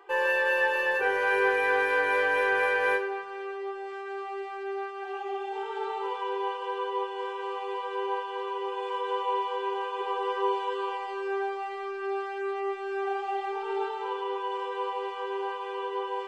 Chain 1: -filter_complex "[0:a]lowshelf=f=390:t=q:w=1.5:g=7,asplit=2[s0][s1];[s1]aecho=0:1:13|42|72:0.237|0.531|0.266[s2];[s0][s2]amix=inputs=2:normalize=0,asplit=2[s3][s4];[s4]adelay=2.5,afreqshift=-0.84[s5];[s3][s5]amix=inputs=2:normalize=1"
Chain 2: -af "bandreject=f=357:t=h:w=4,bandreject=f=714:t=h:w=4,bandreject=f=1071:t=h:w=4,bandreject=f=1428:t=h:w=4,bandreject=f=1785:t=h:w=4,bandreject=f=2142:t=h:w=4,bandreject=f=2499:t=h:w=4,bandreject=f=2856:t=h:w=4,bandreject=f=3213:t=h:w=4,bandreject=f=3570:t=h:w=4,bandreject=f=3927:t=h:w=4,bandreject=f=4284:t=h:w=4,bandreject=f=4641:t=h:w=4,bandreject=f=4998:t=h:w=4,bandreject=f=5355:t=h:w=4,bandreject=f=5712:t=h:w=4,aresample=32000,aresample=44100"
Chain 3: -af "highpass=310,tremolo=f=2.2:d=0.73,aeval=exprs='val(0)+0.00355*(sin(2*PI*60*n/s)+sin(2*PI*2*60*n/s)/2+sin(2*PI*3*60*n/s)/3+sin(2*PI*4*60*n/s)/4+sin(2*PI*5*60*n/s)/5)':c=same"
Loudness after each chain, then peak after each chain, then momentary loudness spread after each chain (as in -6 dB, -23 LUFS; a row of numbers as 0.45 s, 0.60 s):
-31.5 LUFS, -29.5 LUFS, -33.0 LUFS; -14.5 dBFS, -13.0 dBFS, -15.5 dBFS; 11 LU, 11 LU, 12 LU